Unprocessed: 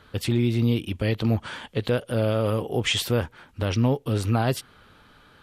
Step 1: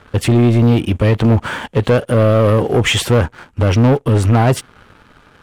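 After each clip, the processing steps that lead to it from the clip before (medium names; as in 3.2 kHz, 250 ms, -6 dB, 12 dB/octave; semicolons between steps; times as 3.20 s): Chebyshev low-pass 7.6 kHz, order 2; peaking EQ 4.4 kHz -11 dB 1.3 oct; waveshaping leveller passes 2; trim +8.5 dB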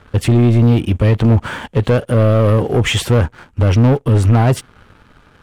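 bass shelf 160 Hz +6 dB; trim -2.5 dB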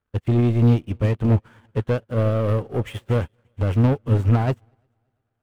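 median filter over 9 samples; multi-head delay 116 ms, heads second and third, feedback 50%, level -19 dB; upward expansion 2.5:1, over -29 dBFS; trim -4 dB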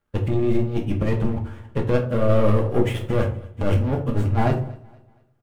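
compressor with a negative ratio -20 dBFS, ratio -0.5; feedback delay 235 ms, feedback 39%, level -23 dB; reverberation RT60 0.45 s, pre-delay 4 ms, DRR 1 dB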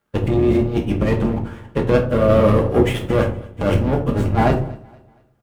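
octave divider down 2 oct, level +2 dB; high-pass 170 Hz 6 dB/octave; trim +6 dB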